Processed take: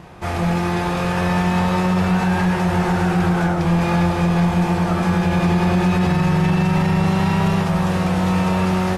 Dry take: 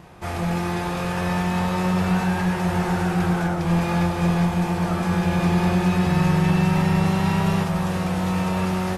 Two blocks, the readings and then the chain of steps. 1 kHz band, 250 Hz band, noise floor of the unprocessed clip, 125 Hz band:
+4.0 dB, +3.5 dB, -27 dBFS, +3.5 dB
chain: high shelf 9100 Hz -7.5 dB; limiter -15 dBFS, peak gain reduction 5 dB; gain +5 dB

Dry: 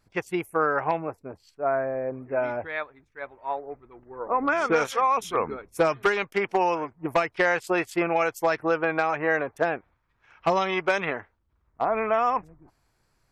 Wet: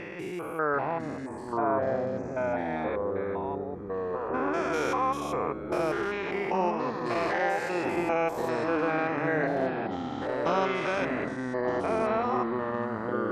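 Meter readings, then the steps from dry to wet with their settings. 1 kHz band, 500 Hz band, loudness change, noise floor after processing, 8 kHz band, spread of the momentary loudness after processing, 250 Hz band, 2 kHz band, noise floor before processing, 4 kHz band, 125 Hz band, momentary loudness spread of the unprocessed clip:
-3.5 dB, -2.0 dB, -3.5 dB, -37 dBFS, -5.0 dB, 6 LU, +1.5 dB, -5.0 dB, -71 dBFS, -4.0 dB, +2.0 dB, 13 LU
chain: stepped spectrum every 0.2 s; in parallel at -2 dB: compressor, threshold -40 dBFS, peak gain reduction 17.5 dB; on the sum: de-hum 366.4 Hz, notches 23; echoes that change speed 0.74 s, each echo -5 st, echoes 2; gain -2.5 dB

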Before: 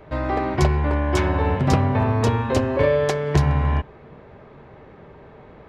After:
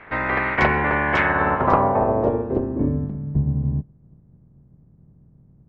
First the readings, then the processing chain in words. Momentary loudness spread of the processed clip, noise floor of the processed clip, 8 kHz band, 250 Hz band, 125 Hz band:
7 LU, -54 dBFS, under -15 dB, -0.5 dB, -4.5 dB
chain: spectral limiter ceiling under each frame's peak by 19 dB; low-pass sweep 2000 Hz -> 150 Hz, 1.2–3.32; gain -2 dB

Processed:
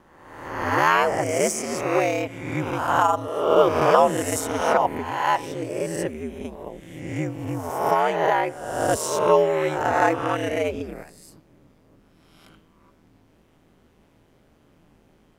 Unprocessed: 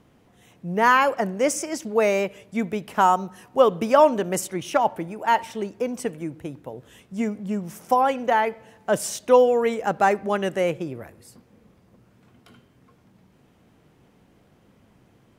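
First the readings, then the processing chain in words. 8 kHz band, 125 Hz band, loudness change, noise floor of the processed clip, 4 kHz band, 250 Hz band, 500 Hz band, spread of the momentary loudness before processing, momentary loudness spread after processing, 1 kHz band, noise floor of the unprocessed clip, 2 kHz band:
+2.0 dB, +4.0 dB, 0.0 dB, -59 dBFS, +1.5 dB, -1.0 dB, 0.0 dB, 16 LU, 15 LU, 0.0 dB, -59 dBFS, +1.0 dB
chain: spectral swells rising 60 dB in 1.11 s; ring modulator 80 Hz

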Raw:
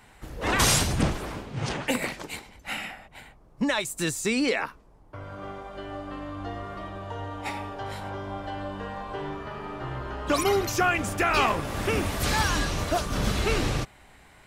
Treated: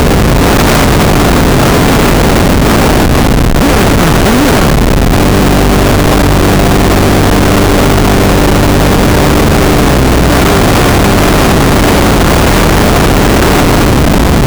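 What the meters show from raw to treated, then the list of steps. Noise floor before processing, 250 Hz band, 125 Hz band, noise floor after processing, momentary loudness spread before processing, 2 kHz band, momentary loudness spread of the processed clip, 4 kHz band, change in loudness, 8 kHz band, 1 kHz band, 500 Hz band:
-54 dBFS, +24.5 dB, +25.0 dB, -6 dBFS, 15 LU, +18.0 dB, 1 LU, +18.5 dB, +21.0 dB, +16.5 dB, +20.0 dB, +22.0 dB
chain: per-bin compression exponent 0.2; low shelf 350 Hz +11 dB; Schmitt trigger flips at -14.5 dBFS; gain +5 dB

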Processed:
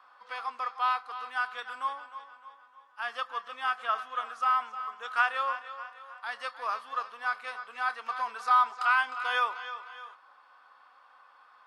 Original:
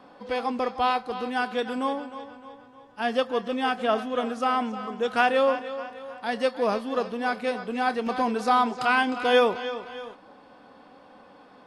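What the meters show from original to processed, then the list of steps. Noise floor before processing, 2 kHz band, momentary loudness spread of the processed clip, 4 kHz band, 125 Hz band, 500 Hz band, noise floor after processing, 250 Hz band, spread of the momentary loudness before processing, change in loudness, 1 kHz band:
-52 dBFS, -2.0 dB, 16 LU, -7.5 dB, n/a, -20.5 dB, -59 dBFS, under -35 dB, 13 LU, -5.0 dB, -3.0 dB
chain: resonant high-pass 1200 Hz, resonance Q 3.6; gain -8.5 dB

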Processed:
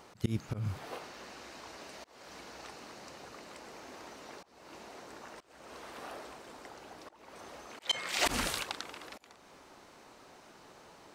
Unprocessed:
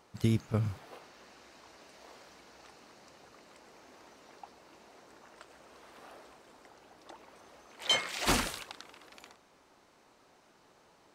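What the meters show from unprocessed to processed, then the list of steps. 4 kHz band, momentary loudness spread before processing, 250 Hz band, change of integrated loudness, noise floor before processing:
-2.0 dB, 19 LU, -4.5 dB, -8.0 dB, -64 dBFS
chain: auto swell 0.321 s; gain +7.5 dB

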